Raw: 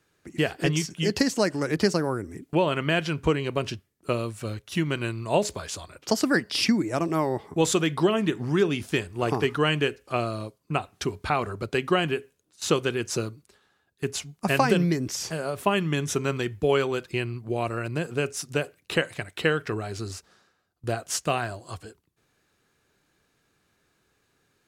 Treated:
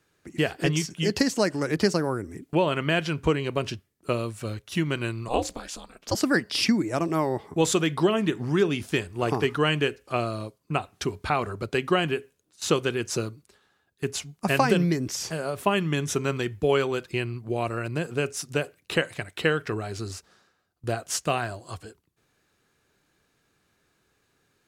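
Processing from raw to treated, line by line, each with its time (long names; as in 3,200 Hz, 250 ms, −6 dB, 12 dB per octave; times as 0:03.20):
0:05.28–0:06.15: ring modulation 120 Hz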